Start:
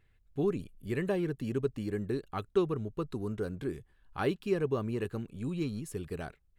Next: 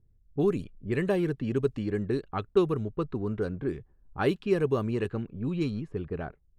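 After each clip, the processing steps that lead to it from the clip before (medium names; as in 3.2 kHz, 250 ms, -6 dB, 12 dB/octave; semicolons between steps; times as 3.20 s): level-controlled noise filter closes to 300 Hz, open at -27 dBFS; trim +4.5 dB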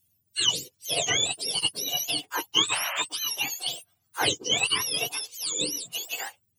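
spectrum inverted on a logarithmic axis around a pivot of 1.1 kHz; painted sound noise, 2.71–3.02 s, 540–3200 Hz -39 dBFS; trim +7 dB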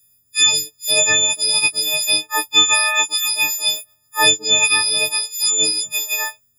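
partials quantised in pitch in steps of 6 st; trim +4 dB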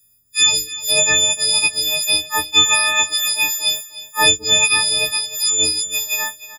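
octave divider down 2 oct, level -3 dB; feedback delay 304 ms, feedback 28%, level -15.5 dB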